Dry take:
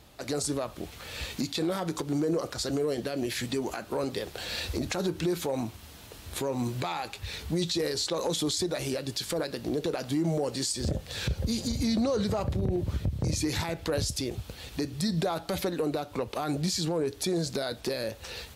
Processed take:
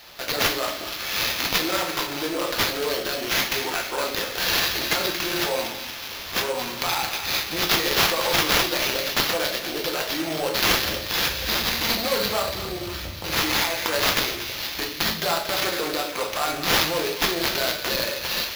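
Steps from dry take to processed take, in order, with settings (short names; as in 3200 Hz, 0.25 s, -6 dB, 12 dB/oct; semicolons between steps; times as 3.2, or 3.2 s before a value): tracing distortion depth 0.39 ms; HPF 41 Hz; tilt shelf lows -8 dB, about 930 Hz; narrowing echo 0.232 s, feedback 73%, band-pass 2800 Hz, level -7 dB; in parallel at -0.5 dB: limiter -18 dBFS, peak gain reduction 7 dB; on the sum: bell 140 Hz -12 dB 1.9 oct; shoebox room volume 110 m³, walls mixed, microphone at 0.81 m; sample-rate reducer 8600 Hz, jitter 0%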